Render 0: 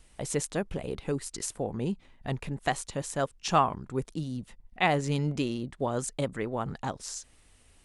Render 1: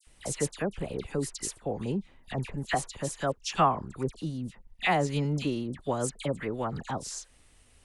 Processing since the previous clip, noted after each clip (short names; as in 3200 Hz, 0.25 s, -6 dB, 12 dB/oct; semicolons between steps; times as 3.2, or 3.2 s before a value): dispersion lows, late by 68 ms, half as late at 2000 Hz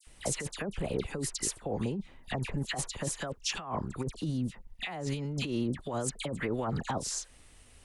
negative-ratio compressor -33 dBFS, ratio -1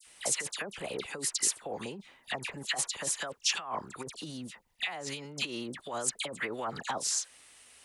HPF 1200 Hz 6 dB/oct; gain +5 dB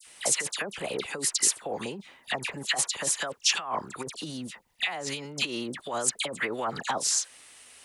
low shelf 61 Hz -9 dB; gain +5 dB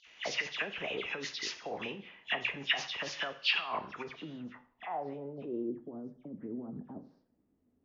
nonlinear frequency compression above 2900 Hz 1.5:1; two-slope reverb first 0.58 s, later 1.6 s, from -25 dB, DRR 8.5 dB; low-pass sweep 2800 Hz -> 250 Hz, 3.91–6.05; gain -6.5 dB